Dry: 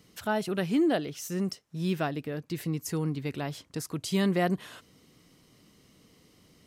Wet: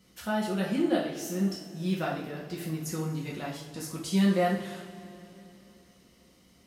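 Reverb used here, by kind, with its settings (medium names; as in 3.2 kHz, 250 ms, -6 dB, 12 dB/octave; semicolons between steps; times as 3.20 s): two-slope reverb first 0.48 s, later 3.4 s, from -18 dB, DRR -4.5 dB; trim -6 dB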